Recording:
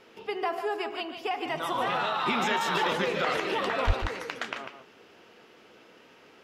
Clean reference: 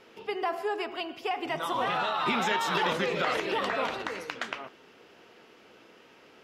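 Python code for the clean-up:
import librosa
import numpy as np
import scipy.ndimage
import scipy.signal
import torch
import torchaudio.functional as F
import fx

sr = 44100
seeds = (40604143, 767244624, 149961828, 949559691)

y = fx.highpass(x, sr, hz=140.0, slope=24, at=(3.86, 3.98), fade=0.02)
y = fx.fix_echo_inverse(y, sr, delay_ms=147, level_db=-8.5)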